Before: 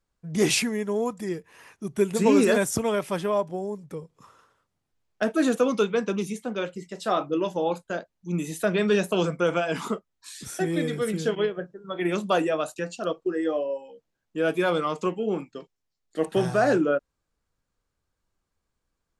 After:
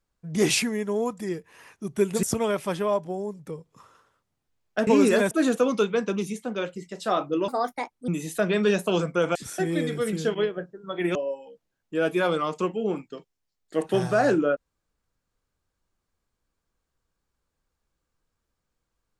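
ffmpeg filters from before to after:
ffmpeg -i in.wav -filter_complex "[0:a]asplit=8[link_01][link_02][link_03][link_04][link_05][link_06][link_07][link_08];[link_01]atrim=end=2.232[link_09];[link_02]atrim=start=2.668:end=5.312[link_10];[link_03]atrim=start=2.228:end=2.672[link_11];[link_04]atrim=start=5.308:end=7.484[link_12];[link_05]atrim=start=7.48:end=8.33,asetpts=PTS-STARTPTS,asetrate=62181,aresample=44100,atrim=end_sample=26585,asetpts=PTS-STARTPTS[link_13];[link_06]atrim=start=8.326:end=9.602[link_14];[link_07]atrim=start=10.358:end=12.162[link_15];[link_08]atrim=start=13.578[link_16];[link_09][link_10]acrossfade=duration=0.004:curve1=hsin:curve2=hsin[link_17];[link_17][link_11]acrossfade=duration=0.004:curve1=hsin:curve2=hsin[link_18];[link_18][link_12]acrossfade=duration=0.004:curve1=hsin:curve2=hsin[link_19];[link_19][link_13]acrossfade=duration=0.004:curve1=hsin:curve2=hsin[link_20];[link_20][link_14]acrossfade=duration=0.004:curve1=hsin:curve2=hsin[link_21];[link_21][link_15]acrossfade=duration=0.004:curve1=hsin:curve2=hsin[link_22];[link_22][link_16]acrossfade=duration=0.004:curve1=hsin:curve2=hsin" out.wav

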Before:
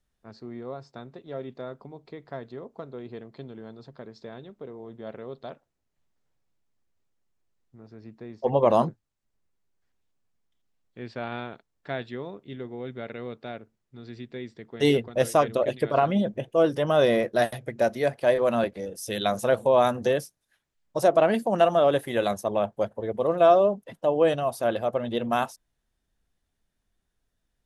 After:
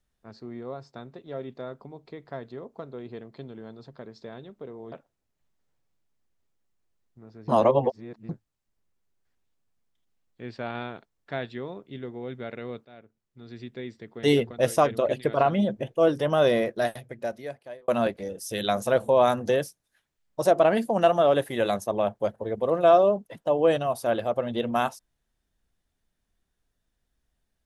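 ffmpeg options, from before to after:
ffmpeg -i in.wav -filter_complex "[0:a]asplit=6[link_01][link_02][link_03][link_04][link_05][link_06];[link_01]atrim=end=4.922[link_07];[link_02]atrim=start=5.488:end=8.052[link_08];[link_03]atrim=start=8.048:end=8.862,asetpts=PTS-STARTPTS,areverse[link_09];[link_04]atrim=start=8.858:end=13.42,asetpts=PTS-STARTPTS,afade=type=out:start_time=4.558:duration=0.004:curve=hsin:silence=0.141254[link_10];[link_05]atrim=start=13.42:end=18.45,asetpts=PTS-STARTPTS,afade=type=in:duration=0.78:silence=0.141254,afade=type=out:start_time=3.51:duration=1.52[link_11];[link_06]atrim=start=18.45,asetpts=PTS-STARTPTS,afade=type=in:duration=0.004:curve=hsin[link_12];[link_07][link_08]acrossfade=duration=0.004:curve1=hsin:curve2=hsin[link_13];[link_13][link_09]acrossfade=duration=0.004:curve1=hsin:curve2=hsin[link_14];[link_10][link_11][link_12]concat=n=3:v=0:a=1[link_15];[link_14][link_15]acrossfade=duration=0.004:curve1=hsin:curve2=hsin" out.wav

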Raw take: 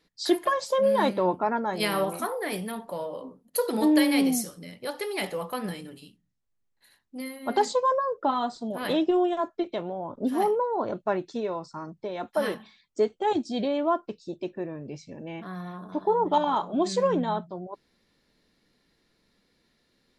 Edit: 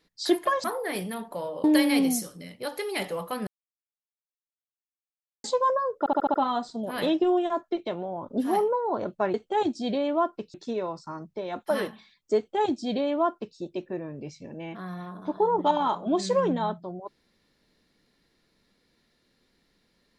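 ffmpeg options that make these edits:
ffmpeg -i in.wav -filter_complex "[0:a]asplit=12[link_01][link_02][link_03][link_04][link_05][link_06][link_07][link_08][link_09][link_10][link_11][link_12];[link_01]atrim=end=0.642[link_13];[link_02]atrim=start=2.208:end=3.212[link_14];[link_03]atrim=start=3.858:end=5.69,asetpts=PTS-STARTPTS,afade=type=out:start_time=1.828:duration=0.004:curve=hsin[link_15];[link_04]atrim=start=5.69:end=7.66,asetpts=PTS-STARTPTS,volume=0[link_16];[link_05]atrim=start=7.66:end=8.282,asetpts=PTS-STARTPTS,afade=type=in:duration=0.004:curve=hsin[link_17];[link_06]atrim=start=8.208:end=8.282[link_18];[link_07]atrim=start=8.208:end=8.282[link_19];[link_08]atrim=start=8.208:end=8.282[link_20];[link_09]atrim=start=8.208:end=8.282[link_21];[link_10]atrim=start=8.208:end=11.212[link_22];[link_11]atrim=start=13.038:end=14.242[link_23];[link_12]atrim=start=11.208[link_24];[link_13][link_14]acrossfade=duration=0.004:curve1=hsin:curve2=hsin[link_25];[link_15][link_16][link_17]concat=n=3:v=0:a=1[link_26];[link_25][link_26]acrossfade=duration=0.004:curve1=hsin:curve2=hsin[link_27];[link_27][link_18]acrossfade=duration=0.004:curve1=hsin:curve2=hsin[link_28];[link_28][link_19]acrossfade=duration=0.004:curve1=hsin:curve2=hsin[link_29];[link_29][link_20]acrossfade=duration=0.004:curve1=hsin:curve2=hsin[link_30];[link_30][link_21]acrossfade=duration=0.004:curve1=hsin:curve2=hsin[link_31];[link_31][link_22]acrossfade=duration=0.004:curve1=hsin:curve2=hsin[link_32];[link_32][link_23]acrossfade=duration=0.004:curve1=hsin:curve2=hsin[link_33];[link_33][link_24]acrossfade=duration=0.004:curve1=hsin:curve2=hsin" out.wav

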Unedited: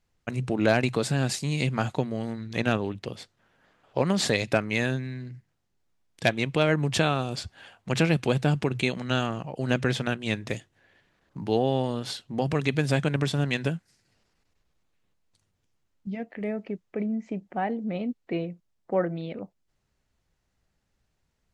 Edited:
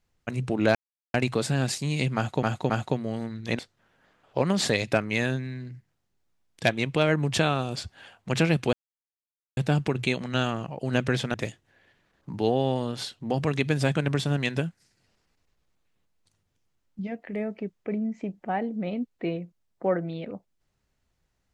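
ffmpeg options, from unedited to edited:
ffmpeg -i in.wav -filter_complex "[0:a]asplit=7[link_01][link_02][link_03][link_04][link_05][link_06][link_07];[link_01]atrim=end=0.75,asetpts=PTS-STARTPTS,afade=type=out:start_time=0.746:duration=0.004:curve=hsin,apad=pad_dur=0.39[link_08];[link_02]atrim=start=0.75:end=2.042,asetpts=PTS-STARTPTS,afade=type=in:duration=0.004:curve=hsin[link_09];[link_03]atrim=start=1.768:end=2.042[link_10];[link_04]atrim=start=1.768:end=2.662[link_11];[link_05]atrim=start=3.188:end=8.33,asetpts=PTS-STARTPTS,afade=type=out:start_time=5.138:duration=0.004:curve=hsin,apad=pad_dur=0.84[link_12];[link_06]atrim=start=8.33:end=10.102,asetpts=PTS-STARTPTS,afade=type=in:duration=0.004:curve=hsin[link_13];[link_07]atrim=start=10.418[link_14];[link_08][link_09]concat=n=2:v=0:a=1[link_15];[link_15][link_10]acrossfade=duration=0.004:curve1=hsin:curve2=hsin[link_16];[link_16][link_11]acrossfade=duration=0.004:curve1=hsin:curve2=hsin[link_17];[link_12][link_13]concat=n=2:v=0:a=1[link_18];[link_17][link_18]acrossfade=duration=0.004:curve1=hsin:curve2=hsin[link_19];[link_19][link_14]acrossfade=duration=0.004:curve1=hsin:curve2=hsin" out.wav

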